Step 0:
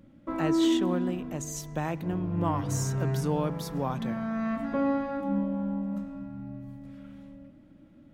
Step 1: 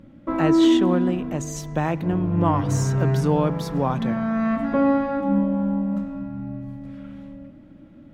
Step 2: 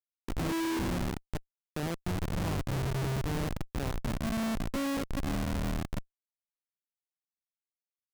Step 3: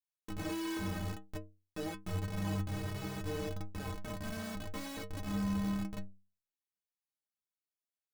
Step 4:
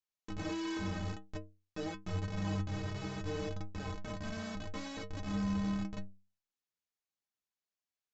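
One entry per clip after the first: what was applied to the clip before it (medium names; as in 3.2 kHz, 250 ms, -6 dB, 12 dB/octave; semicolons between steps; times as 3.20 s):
low-pass 3.8 kHz 6 dB/octave; trim +8 dB
Schmitt trigger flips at -18.5 dBFS; trim -8.5 dB
inharmonic resonator 93 Hz, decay 0.4 s, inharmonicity 0.03; trim +5 dB
resampled via 16 kHz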